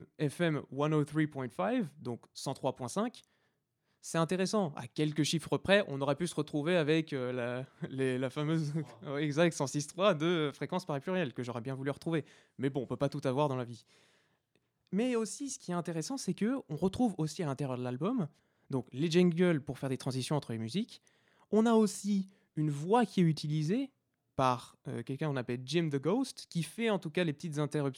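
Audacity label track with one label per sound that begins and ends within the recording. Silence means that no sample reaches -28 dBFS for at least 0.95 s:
4.150000	13.630000	sound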